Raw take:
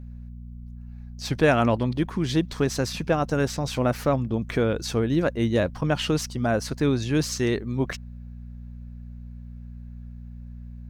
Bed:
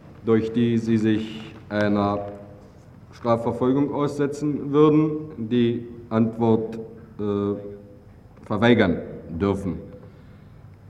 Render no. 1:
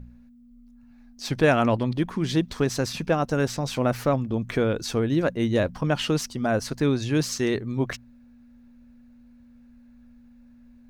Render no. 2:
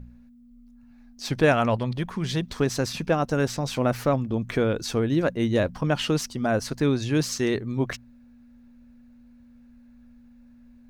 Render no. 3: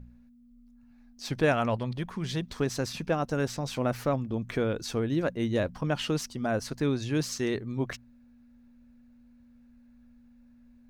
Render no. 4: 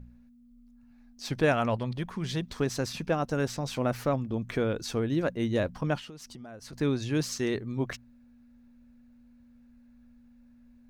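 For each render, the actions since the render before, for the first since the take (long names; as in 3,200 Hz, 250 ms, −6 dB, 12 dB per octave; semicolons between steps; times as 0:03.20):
hum removal 60 Hz, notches 3
0:01.52–0:02.43: parametric band 300 Hz −11 dB 0.43 octaves
level −5 dB
0:05.98–0:06.73: downward compressor 12 to 1, threshold −41 dBFS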